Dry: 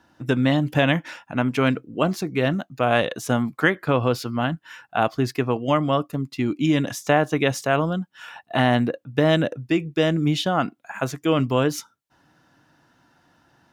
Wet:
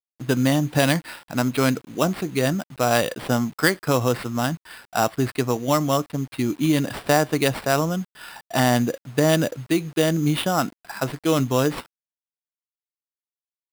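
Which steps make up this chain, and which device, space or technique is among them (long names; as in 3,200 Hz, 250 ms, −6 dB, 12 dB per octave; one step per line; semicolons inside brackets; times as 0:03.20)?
early 8-bit sampler (sample-rate reduction 6,500 Hz, jitter 0%; bit reduction 8 bits)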